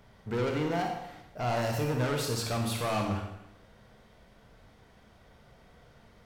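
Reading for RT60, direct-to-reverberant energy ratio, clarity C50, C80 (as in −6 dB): 0.85 s, 2.0 dB, 4.5 dB, 6.5 dB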